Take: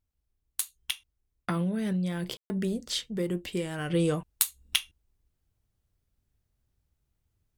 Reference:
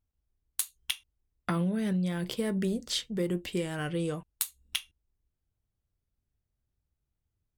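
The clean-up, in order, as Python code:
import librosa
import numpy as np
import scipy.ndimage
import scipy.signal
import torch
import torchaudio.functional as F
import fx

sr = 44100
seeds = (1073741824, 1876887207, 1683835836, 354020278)

y = fx.fix_ambience(x, sr, seeds[0], print_start_s=5.34, print_end_s=5.84, start_s=2.37, end_s=2.5)
y = fx.fix_interpolate(y, sr, at_s=(1.46,), length_ms=18.0)
y = fx.fix_level(y, sr, at_s=3.9, step_db=-6.0)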